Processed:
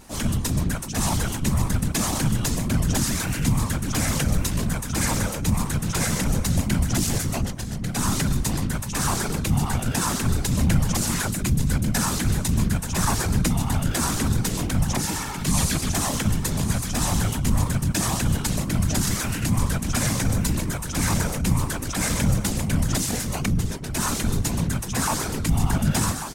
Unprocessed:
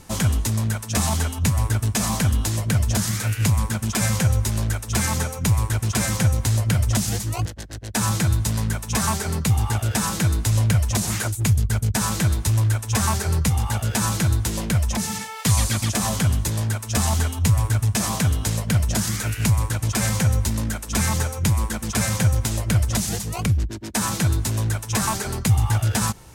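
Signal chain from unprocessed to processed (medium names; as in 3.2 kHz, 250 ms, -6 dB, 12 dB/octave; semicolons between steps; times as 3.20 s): delay 1144 ms -9.5 dB; transient shaper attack -8 dB, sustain +3 dB; whisper effect; trim -1 dB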